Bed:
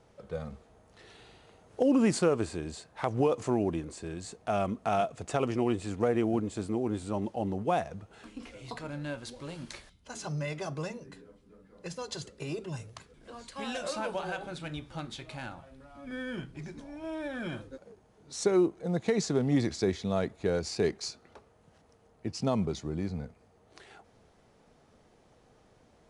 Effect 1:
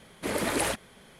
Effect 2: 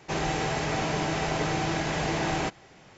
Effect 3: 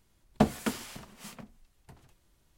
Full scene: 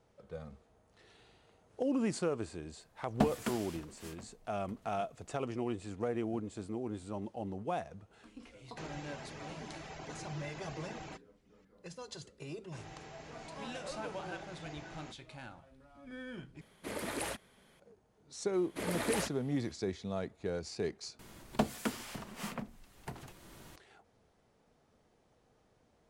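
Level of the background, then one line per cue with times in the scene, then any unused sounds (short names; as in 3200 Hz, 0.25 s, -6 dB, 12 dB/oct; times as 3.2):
bed -8 dB
2.8 add 3 -5.5 dB
8.68 add 2 -16.5 dB + reverb removal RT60 0.8 s
12.63 add 2 -9.5 dB + spectral noise reduction 13 dB
16.61 replace with 1 -10.5 dB
18.53 add 1 -8 dB
21.19 replace with 3 -1.5 dB + three-band squash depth 70%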